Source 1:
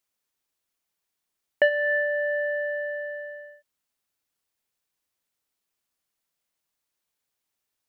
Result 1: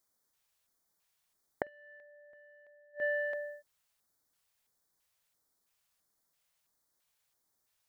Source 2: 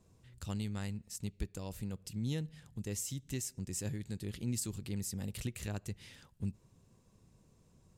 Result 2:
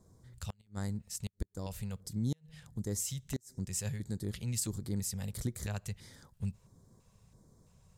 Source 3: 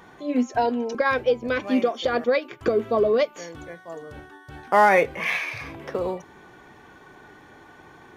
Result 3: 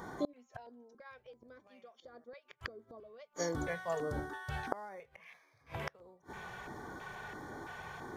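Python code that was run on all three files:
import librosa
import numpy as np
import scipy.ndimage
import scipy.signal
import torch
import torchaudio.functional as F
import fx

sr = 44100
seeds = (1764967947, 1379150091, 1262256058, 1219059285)

y = fx.gate_flip(x, sr, shuts_db=-25.0, range_db=-34)
y = fx.filter_lfo_notch(y, sr, shape='square', hz=1.5, low_hz=300.0, high_hz=2700.0, q=0.84)
y = y * librosa.db_to_amplitude(3.5)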